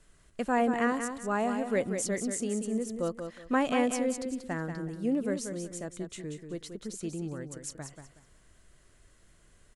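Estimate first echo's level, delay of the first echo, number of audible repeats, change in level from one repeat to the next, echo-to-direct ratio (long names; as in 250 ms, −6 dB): −7.5 dB, 185 ms, 3, −12.0 dB, −7.0 dB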